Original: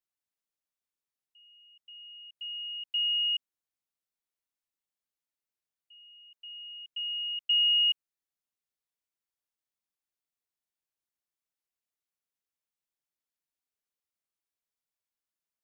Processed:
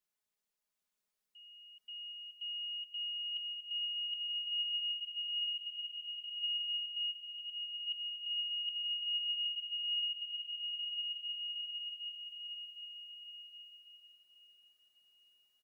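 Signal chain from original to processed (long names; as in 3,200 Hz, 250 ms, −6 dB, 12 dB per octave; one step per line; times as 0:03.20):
comb filter 4.8 ms, depth 99%
on a send: repeating echo 765 ms, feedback 42%, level −4 dB
on the sum: brickwall limiter −25.5 dBFS, peak gain reduction 7 dB
reversed playback
downward compressor, threshold −39 dBFS, peak gain reduction 10.5 dB
reversed playback
slow-attack reverb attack 2,450 ms, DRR −2 dB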